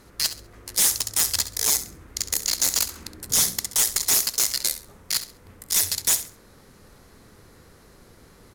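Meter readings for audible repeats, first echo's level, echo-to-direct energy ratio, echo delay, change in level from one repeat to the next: 2, -13.0 dB, -12.5 dB, 67 ms, -12.0 dB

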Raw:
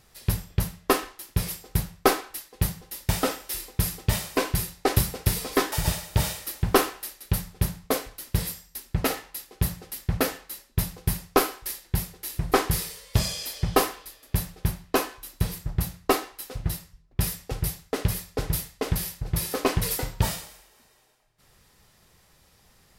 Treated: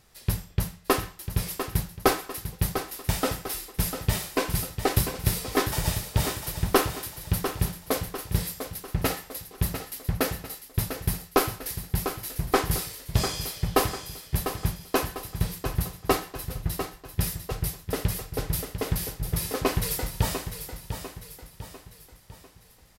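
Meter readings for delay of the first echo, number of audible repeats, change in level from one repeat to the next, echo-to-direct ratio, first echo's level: 0.698 s, 4, -6.5 dB, -8.0 dB, -9.0 dB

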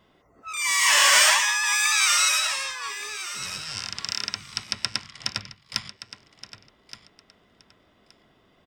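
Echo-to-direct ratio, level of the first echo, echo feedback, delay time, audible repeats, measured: -14.0 dB, -14.0 dB, 19%, 1.172 s, 2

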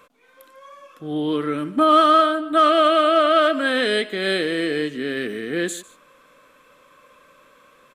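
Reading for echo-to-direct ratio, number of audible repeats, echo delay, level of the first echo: -19.5 dB, 1, 0.148 s, -19.5 dB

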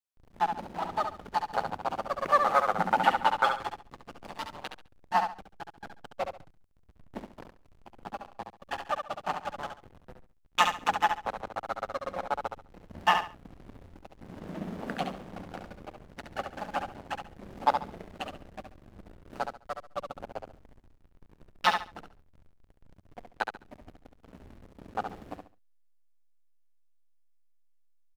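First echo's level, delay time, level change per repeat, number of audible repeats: -6.5 dB, 69 ms, -12.0 dB, 3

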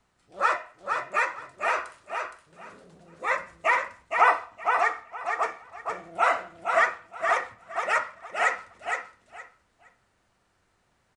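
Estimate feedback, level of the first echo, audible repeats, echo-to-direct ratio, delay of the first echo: 20%, -5.0 dB, 3, -5.0 dB, 0.466 s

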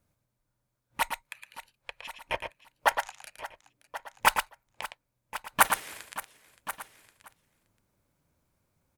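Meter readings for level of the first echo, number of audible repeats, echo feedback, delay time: -7.0 dB, 5, no steady repeat, 0.113 s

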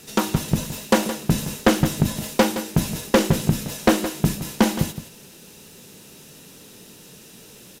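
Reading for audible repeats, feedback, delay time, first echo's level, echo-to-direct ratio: 1, no steady repeat, 0.168 s, -12.0 dB, -12.0 dB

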